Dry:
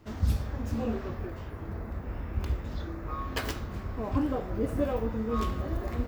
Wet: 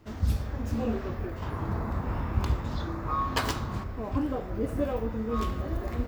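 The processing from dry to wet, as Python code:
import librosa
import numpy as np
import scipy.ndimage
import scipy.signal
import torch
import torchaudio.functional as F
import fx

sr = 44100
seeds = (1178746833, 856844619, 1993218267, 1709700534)

y = fx.graphic_eq(x, sr, hz=(125, 250, 1000, 4000, 8000), db=(7, 3, 10, 5, 5), at=(1.42, 3.84))
y = fx.rider(y, sr, range_db=10, speed_s=2.0)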